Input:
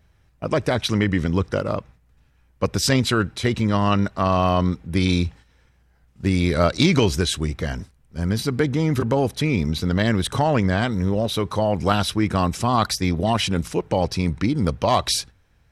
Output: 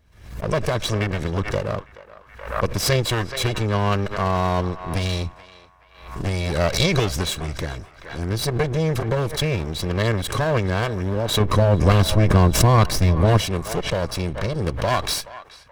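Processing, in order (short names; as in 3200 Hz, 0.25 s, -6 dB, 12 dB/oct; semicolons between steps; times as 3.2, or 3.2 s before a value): minimum comb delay 1.8 ms; 11.4–13.41 low shelf 460 Hz +10 dB; narrowing echo 0.427 s, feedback 43%, band-pass 1400 Hz, level -14.5 dB; backwards sustainer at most 88 dB/s; gain -1 dB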